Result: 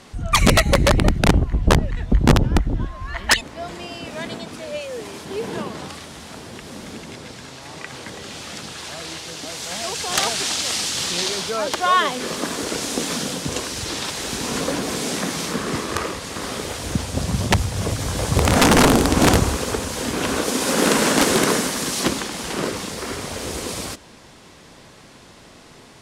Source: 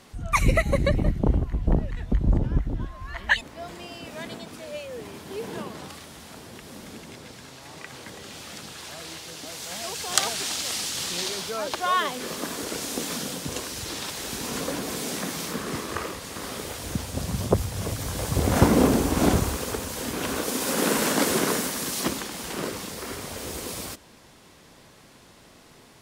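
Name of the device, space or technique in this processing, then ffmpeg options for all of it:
overflowing digital effects unit: -filter_complex "[0:a]asettb=1/sr,asplit=3[s0][s1][s2];[s0]atrim=end=4.814[s3];[s1]atrim=start=4.81:end=5.25,asetpts=PTS-STARTPTS,afade=t=in:d=0.004:c=qsin,afade=t=out:st=0.436:d=0.004:c=qsin,bass=f=250:g=-5,treble=f=4000:g=4[s4];[s2]atrim=start=5.246[s5];[s3][s4]acrossfade=d=0.004:c1=hsin:c2=qsin[s6];[s6][s5]acrossfade=d=0.004:c1=qsin:c2=hsin,aeval=exprs='(mod(4.22*val(0)+1,2)-1)/4.22':c=same,lowpass=9700,volume=2.11"

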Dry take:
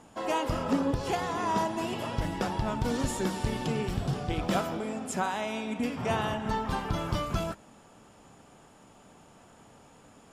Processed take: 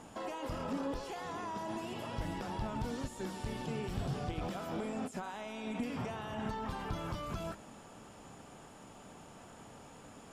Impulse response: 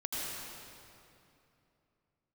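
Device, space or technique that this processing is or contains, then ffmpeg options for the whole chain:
de-esser from a sidechain: -filter_complex "[0:a]asettb=1/sr,asplit=3[s0][s1][s2];[s0]atrim=end=0.774[s3];[s1]atrim=start=0.77:end=1.25,asetpts=PTS-STARTPTS,afade=t=in:d=0.004:c=qsin,afade=t=out:st=0.476:d=0.004:c=qsin,equalizer=f=110:t=o:w=1.4:g=-14.5[s4];[s2]atrim=start=1.246[s5];[s3][s4]acrossfade=d=0.004:c1=hsin:c2=qsin[s6];[s6][s5]acrossfade=d=0.004:c1=qsin:c2=hsin,asplit=2[s7][s8];[s8]highpass=f=6700:p=1,apad=whole_len=455483[s9];[s7][s9]sidechaincompress=threshold=0.00158:ratio=8:attack=1.9:release=23,volume=1.26"

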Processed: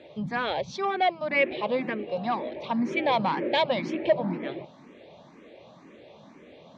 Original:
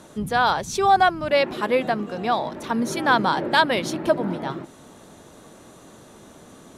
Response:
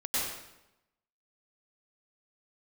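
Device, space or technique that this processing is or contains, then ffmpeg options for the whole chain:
barber-pole phaser into a guitar amplifier: -filter_complex "[0:a]asettb=1/sr,asplit=3[s0][s1][s2];[s0]atrim=end=0.734[s3];[s1]atrim=start=0.73:end=1.29,asetpts=PTS-STARTPTS,afade=t=in:d=0.004:c=qsin,afade=t=out:st=0.556:d=0.004:c=qsin,highpass=230[s4];[s2]atrim=start=1.286[s5];[s3][s4]acrossfade=d=0.004:c1=hsin:c2=qsin[s6];[s6][s5]acrossfade=d=0.004:c1=qsin:c2=hsin,asplit=2[s7][s8];[s8]afreqshift=2[s9];[s7][s9]amix=inputs=2:normalize=1,asoftclip=type=tanh:threshold=0.168,highpass=90,equalizer=f=100:t=q:w=4:g=-7,equalizer=f=560:t=q:w=4:g=6,equalizer=f=1400:t=q:w=4:g=-10,equalizer=f=2300:t=q:w=4:g=9,lowpass=f=4200:w=0.5412,lowpass=f=4200:w=1.3066,volume=0.891"

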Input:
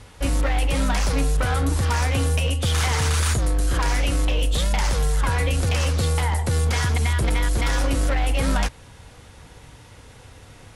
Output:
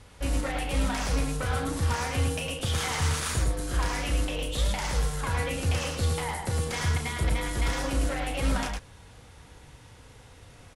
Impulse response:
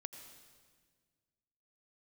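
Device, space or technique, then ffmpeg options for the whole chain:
slapback doubling: -filter_complex "[0:a]asplit=3[s0][s1][s2];[s1]adelay=34,volume=0.398[s3];[s2]adelay=107,volume=0.596[s4];[s0][s3][s4]amix=inputs=3:normalize=0,volume=0.447"

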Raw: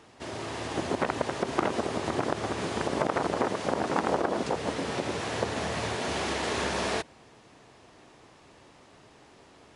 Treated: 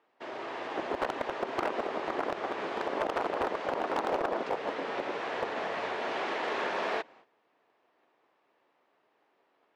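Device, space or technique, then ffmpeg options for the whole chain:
walkie-talkie: -af "highpass=410,lowpass=2500,asoftclip=type=hard:threshold=0.0708,agate=range=0.2:threshold=0.002:ratio=16:detection=peak"

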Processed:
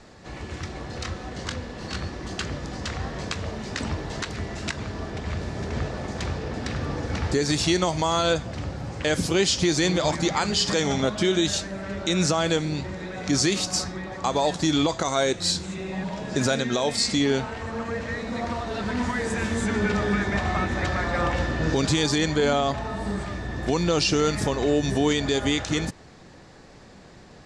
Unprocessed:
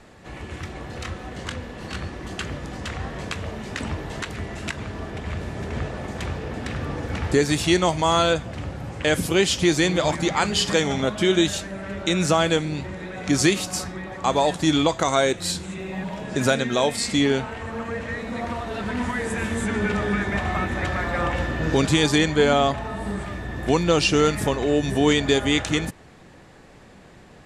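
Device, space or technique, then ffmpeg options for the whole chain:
over-bright horn tweeter: -af "lowpass=5700,highshelf=f=3800:t=q:w=1.5:g=6,alimiter=limit=0.251:level=0:latency=1:release=73"

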